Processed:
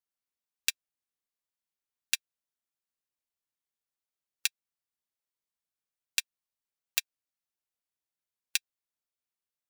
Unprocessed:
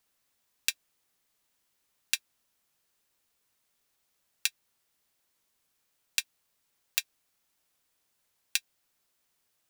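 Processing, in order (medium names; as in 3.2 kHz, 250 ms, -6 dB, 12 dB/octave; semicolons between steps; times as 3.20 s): upward expansion 2.5:1, over -38 dBFS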